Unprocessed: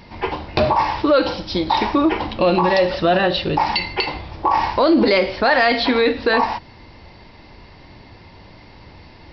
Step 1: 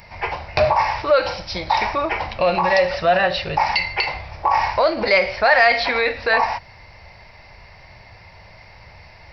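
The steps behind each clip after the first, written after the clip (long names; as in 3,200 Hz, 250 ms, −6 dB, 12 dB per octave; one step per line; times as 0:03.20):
drawn EQ curve 110 Hz 0 dB, 190 Hz −6 dB, 280 Hz −17 dB, 630 Hz +4 dB, 1,000 Hz 0 dB, 1,600 Hz +3 dB, 2,300 Hz +7 dB, 3,300 Hz −5 dB, 8,400 Hz +13 dB
level −1.5 dB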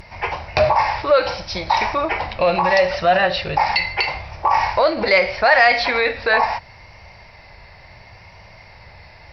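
pitch vibrato 0.75 Hz 32 cents
harmonic generator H 2 −34 dB, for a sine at −1.5 dBFS
level +1 dB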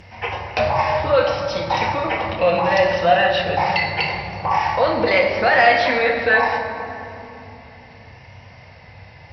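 convolution reverb RT60 3.3 s, pre-delay 3 ms, DRR 1 dB
level −9 dB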